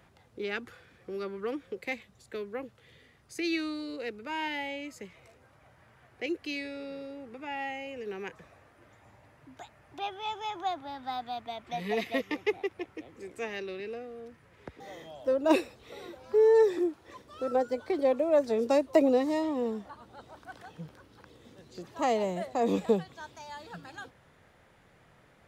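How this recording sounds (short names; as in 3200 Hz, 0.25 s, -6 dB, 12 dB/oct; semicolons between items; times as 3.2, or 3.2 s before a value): noise floor -62 dBFS; spectral tilt -3.5 dB/oct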